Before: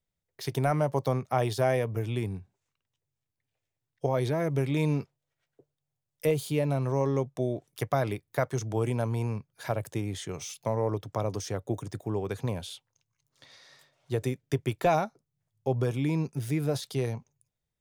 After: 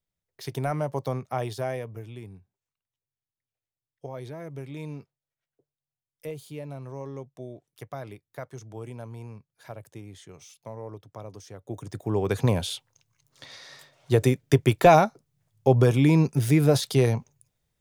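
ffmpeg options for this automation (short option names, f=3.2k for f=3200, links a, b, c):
-af "volume=17.5dB,afade=t=out:st=1.25:d=0.89:silence=0.375837,afade=t=in:st=11.59:d=0.42:silence=0.237137,afade=t=in:st=12.01:d=0.41:silence=0.446684"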